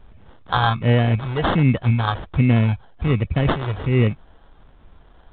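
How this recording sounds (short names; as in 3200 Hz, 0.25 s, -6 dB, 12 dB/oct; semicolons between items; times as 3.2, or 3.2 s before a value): phasing stages 2, 1.3 Hz, lowest notch 220–1400 Hz; aliases and images of a low sample rate 2400 Hz, jitter 0%; A-law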